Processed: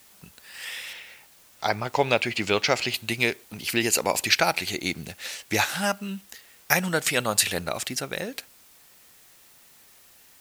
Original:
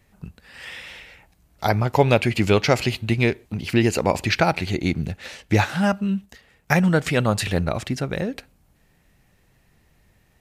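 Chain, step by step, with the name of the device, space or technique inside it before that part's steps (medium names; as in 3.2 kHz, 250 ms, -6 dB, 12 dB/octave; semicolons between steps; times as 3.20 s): 0.93–2.94 s: distance through air 100 m; turntable without a phono preamp (RIAA curve recording; white noise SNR 27 dB); trim -2.5 dB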